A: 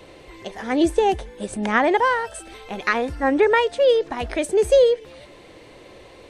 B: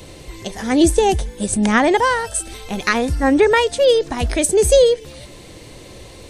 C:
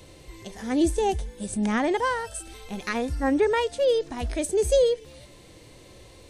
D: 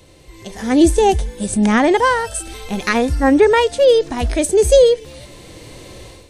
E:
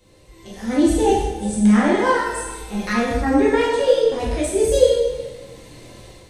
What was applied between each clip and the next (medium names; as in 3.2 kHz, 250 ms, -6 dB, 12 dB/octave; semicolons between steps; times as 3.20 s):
tone controls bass +11 dB, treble +14 dB; trim +2 dB
harmonic-percussive split percussive -6 dB; trim -8 dB
level rider gain up to 11.5 dB; trim +1 dB
plate-style reverb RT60 1.2 s, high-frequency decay 0.8×, DRR -7.5 dB; trim -12.5 dB